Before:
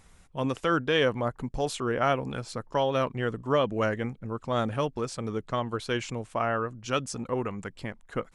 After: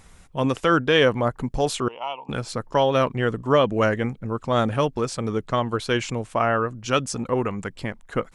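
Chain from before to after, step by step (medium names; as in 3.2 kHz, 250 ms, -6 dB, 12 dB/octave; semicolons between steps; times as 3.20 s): 1.88–2.29 s: two resonant band-passes 1.6 kHz, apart 1.6 oct; trim +6.5 dB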